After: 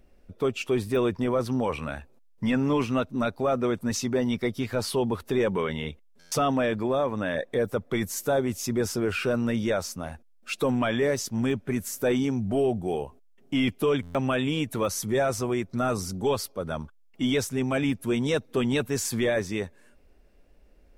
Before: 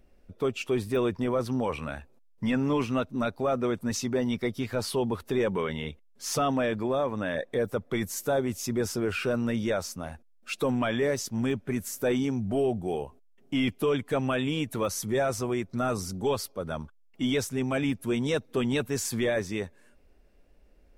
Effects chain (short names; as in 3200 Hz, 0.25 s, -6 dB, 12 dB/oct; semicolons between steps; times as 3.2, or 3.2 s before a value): stuck buffer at 6.19/14.02, samples 512, times 10; gain +2 dB